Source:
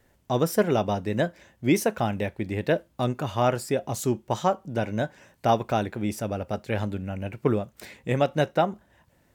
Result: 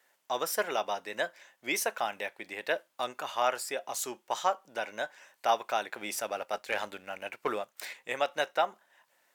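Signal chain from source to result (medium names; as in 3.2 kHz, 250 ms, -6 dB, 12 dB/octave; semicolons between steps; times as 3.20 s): high-pass 850 Hz 12 dB/octave; 5.90–7.93 s: waveshaping leveller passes 1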